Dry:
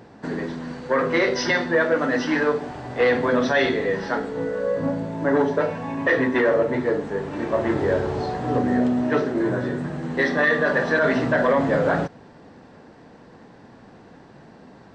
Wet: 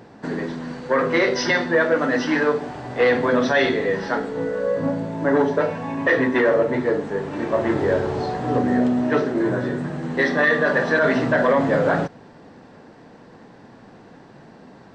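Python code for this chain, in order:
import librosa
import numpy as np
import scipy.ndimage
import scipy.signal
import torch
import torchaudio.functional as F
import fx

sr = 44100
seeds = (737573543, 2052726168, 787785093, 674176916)

y = fx.peak_eq(x, sr, hz=65.0, db=-7.0, octaves=0.61)
y = y * librosa.db_to_amplitude(1.5)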